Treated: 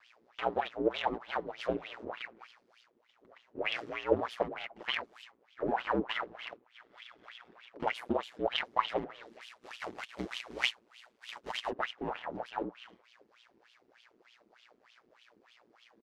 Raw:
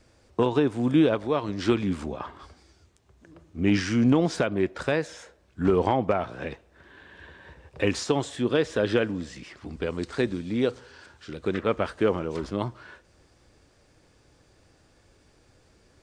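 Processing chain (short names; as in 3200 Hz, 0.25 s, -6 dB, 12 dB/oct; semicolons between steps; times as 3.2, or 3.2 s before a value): 9.4–11.69 spectral contrast lowered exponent 0.2; steep low-pass 7100 Hz; gate with hold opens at -56 dBFS; comb 7.5 ms, depth 61%; full-wave rectifier; wah 3.3 Hz 290–3200 Hz, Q 5.4; ring modulator 59 Hz; mismatched tape noise reduction encoder only; gain +8 dB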